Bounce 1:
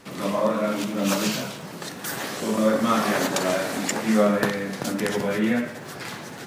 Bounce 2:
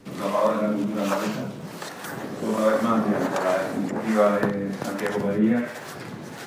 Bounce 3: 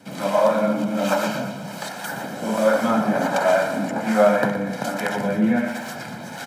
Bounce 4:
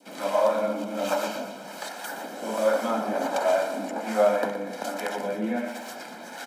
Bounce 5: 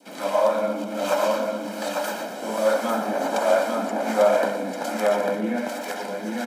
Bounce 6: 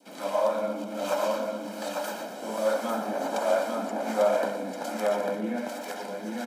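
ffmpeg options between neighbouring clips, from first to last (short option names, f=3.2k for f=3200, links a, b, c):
-filter_complex "[0:a]acrossover=split=780|1700[a][b][c];[c]acompressor=threshold=-42dB:ratio=6[d];[a][b][d]amix=inputs=3:normalize=0,acrossover=split=470[e][f];[e]aeval=exprs='val(0)*(1-0.7/2+0.7/2*cos(2*PI*1.3*n/s))':c=same[g];[f]aeval=exprs='val(0)*(1-0.7/2-0.7/2*cos(2*PI*1.3*n/s))':c=same[h];[g][h]amix=inputs=2:normalize=0,volume=4dB"
-filter_complex "[0:a]highpass=180,aecho=1:1:1.3:0.68,asplit=2[a][b];[b]aecho=0:1:120|240|360|480|600|720:0.282|0.155|0.0853|0.0469|0.0258|0.0142[c];[a][c]amix=inputs=2:normalize=0,volume=2.5dB"
-af "adynamicequalizer=threshold=0.0112:dfrequency=1600:dqfactor=1.7:tfrequency=1600:tqfactor=1.7:attack=5:release=100:ratio=0.375:range=3:mode=cutabove:tftype=bell,highpass=f=260:w=0.5412,highpass=f=260:w=1.3066,volume=-4dB"
-af "aecho=1:1:847:0.668,volume=2dB"
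-af "equalizer=f=1.9k:t=o:w=0.77:g=-2.5,volume=-5dB"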